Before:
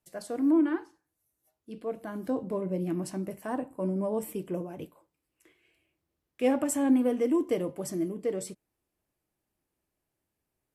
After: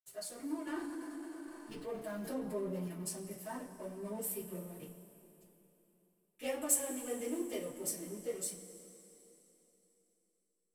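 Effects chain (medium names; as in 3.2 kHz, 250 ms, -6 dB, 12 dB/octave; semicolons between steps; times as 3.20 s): pre-emphasis filter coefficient 0.8; hysteresis with a dead band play -52.5 dBFS; touch-sensitive flanger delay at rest 8.1 ms, full sweep at -25.5 dBFS; two-slope reverb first 0.21 s, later 3.5 s, from -22 dB, DRR -9.5 dB; 0.67–2.88 s: level flattener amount 50%; trim -3 dB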